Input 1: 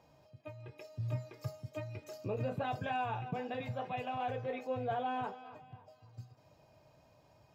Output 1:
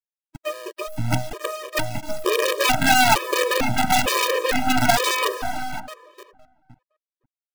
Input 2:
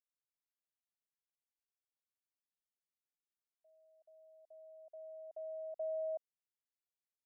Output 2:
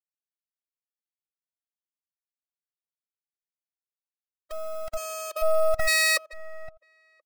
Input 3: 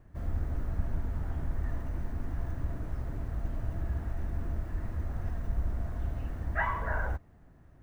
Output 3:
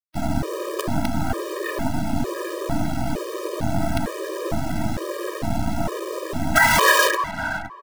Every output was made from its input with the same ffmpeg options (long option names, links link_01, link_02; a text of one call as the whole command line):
ffmpeg -i in.wav -filter_complex "[0:a]acrossover=split=390|810[link_01][link_02][link_03];[link_02]aeval=exprs='(mod(112*val(0)+1,2)-1)/112':channel_layout=same[link_04];[link_01][link_04][link_03]amix=inputs=3:normalize=0,afftdn=noise_reduction=28:noise_floor=-47,highpass=240,acrusher=bits=7:dc=4:mix=0:aa=0.000001,asplit=2[link_05][link_06];[link_06]adelay=514,lowpass=frequency=1800:poles=1,volume=-15dB,asplit=2[link_07][link_08];[link_08]adelay=514,lowpass=frequency=1800:poles=1,volume=0.15[link_09];[link_07][link_09]amix=inputs=2:normalize=0[link_10];[link_05][link_10]amix=inputs=2:normalize=0,alimiter=level_in=32dB:limit=-1dB:release=50:level=0:latency=1,afftfilt=real='re*gt(sin(2*PI*1.1*pts/sr)*(1-2*mod(floor(b*sr/1024/320),2)),0)':imag='im*gt(sin(2*PI*1.1*pts/sr)*(1-2*mod(floor(b*sr/1024/320),2)),0)':win_size=1024:overlap=0.75,volume=-2.5dB" out.wav